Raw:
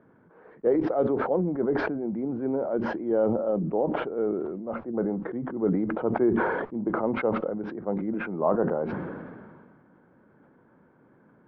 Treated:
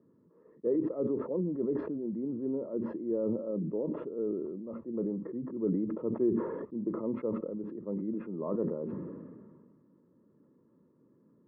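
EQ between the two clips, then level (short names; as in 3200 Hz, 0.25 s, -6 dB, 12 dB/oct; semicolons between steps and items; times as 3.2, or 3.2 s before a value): running mean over 58 samples; HPF 250 Hz 6 dB/oct; 0.0 dB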